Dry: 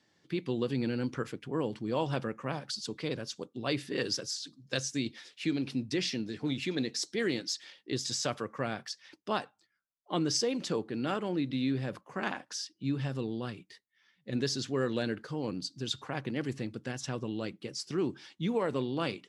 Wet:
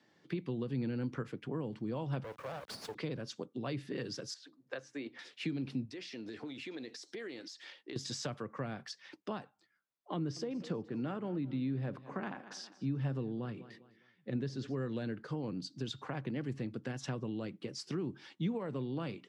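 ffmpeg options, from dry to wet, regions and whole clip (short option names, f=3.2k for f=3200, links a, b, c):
-filter_complex "[0:a]asettb=1/sr,asplit=3[a][b][c];[a]atrim=end=2.244[d];[b]atrim=start=2.24:end=2.95,asetpts=PTS-STARTPTS,afade=t=in:d=0.004:c=qsin,afade=t=out:st=0.706:d=0.004:c=qsin,highpass=f=500:t=q:w=1.8,asoftclip=type=hard:threshold=-31dB,acrusher=bits=6:dc=4:mix=0:aa=0.000001[e];[c]atrim=start=2.946[f];[d][e]acrossfade=d=0.004:c1=hsin:c2=qsin[g];[g][f]acrossfade=d=0.004:c1=qsin:c2=hsin,asettb=1/sr,asplit=3[h][i][j];[h]atrim=end=4.344[k];[i]atrim=start=4.34:end=5.19,asetpts=PTS-STARTPTS,afade=t=in:d=0.004:c=qsin,afade=t=out:st=0.846:d=0.004:c=qsin,acrossover=split=360 2200:gain=0.0891 1 0.178[l][m][n];[l][m][n]amix=inputs=3:normalize=0,bandreject=f=61.67:t=h:w=4,bandreject=f=123.34:t=h:w=4,bandreject=f=185.01:t=h:w=4,bandreject=f=246.68:t=h:w=4,bandreject=f=308.35:t=h:w=4[o];[j]atrim=start=5.186[p];[k][o]acrossfade=d=0.004:c1=hsin:c2=qsin[q];[q][p]acrossfade=d=0.004:c1=qsin:c2=hsin,asettb=1/sr,asplit=3[r][s][t];[r]atrim=end=5.854[u];[s]atrim=start=5.85:end=7.96,asetpts=PTS-STARTPTS,afade=t=in:d=0.004:c=qsin,afade=t=out:st=2.106:d=0.004:c=qsin,equalizer=f=160:w=1.4:g=-14,acompressor=threshold=-42dB:ratio=8:attack=3.2:release=140:knee=1:detection=peak[v];[t]atrim=start=7.956[w];[u][v]acrossfade=d=0.004:c1=hsin:c2=qsin[x];[x][w]acrossfade=d=0.004:c1=qsin:c2=hsin,asettb=1/sr,asplit=3[y][z][aa];[y]atrim=end=10.164[ab];[z]atrim=start=10.16:end=14.76,asetpts=PTS-STARTPTS,afade=t=in:d=0.004:c=qsin,afade=t=out:st=4.596:d=0.004:c=qsin,highshelf=f=3.3k:g=-8,aecho=1:1:203|406|609:0.1|0.036|0.013,atrim=end_sample=202860[ac];[aa]atrim=start=14.756[ad];[ab][ac]acrossfade=d=0.004:c1=hsin:c2=qsin[ae];[ae][ad]acrossfade=d=0.004:c1=qsin:c2=hsin,highpass=130,highshelf=f=4.1k:g=-11.5,acrossover=split=170[af][ag];[ag]acompressor=threshold=-42dB:ratio=6[ah];[af][ah]amix=inputs=2:normalize=0,volume=3.5dB"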